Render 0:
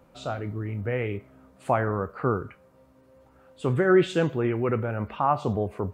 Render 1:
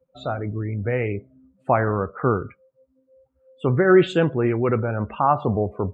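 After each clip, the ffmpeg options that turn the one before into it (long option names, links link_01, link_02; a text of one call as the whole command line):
ffmpeg -i in.wav -af "afftdn=noise_reduction=30:noise_floor=-42,volume=4.5dB" out.wav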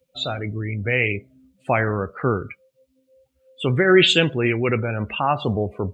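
ffmpeg -i in.wav -af "highshelf=frequency=1800:width_type=q:width=1.5:gain=14" out.wav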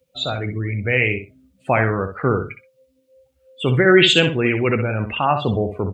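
ffmpeg -i in.wav -af "aecho=1:1:63|126:0.355|0.0568,volume=2dB" out.wav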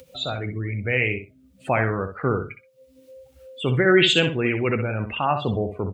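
ffmpeg -i in.wav -af "acompressor=mode=upward:threshold=-30dB:ratio=2.5,volume=-4dB" out.wav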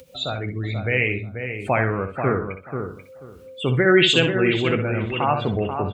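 ffmpeg -i in.wav -filter_complex "[0:a]asplit=2[link_01][link_02];[link_02]adelay=487,lowpass=frequency=1800:poles=1,volume=-6.5dB,asplit=2[link_03][link_04];[link_04]adelay=487,lowpass=frequency=1800:poles=1,volume=0.19,asplit=2[link_05][link_06];[link_06]adelay=487,lowpass=frequency=1800:poles=1,volume=0.19[link_07];[link_01][link_03][link_05][link_07]amix=inputs=4:normalize=0,volume=1dB" out.wav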